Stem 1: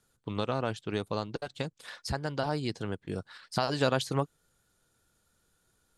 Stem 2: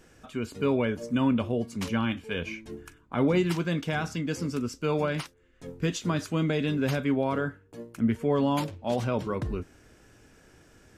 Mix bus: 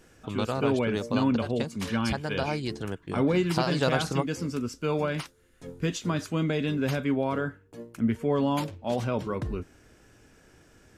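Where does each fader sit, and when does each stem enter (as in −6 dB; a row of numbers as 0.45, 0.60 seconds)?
+1.0, −0.5 decibels; 0.00, 0.00 seconds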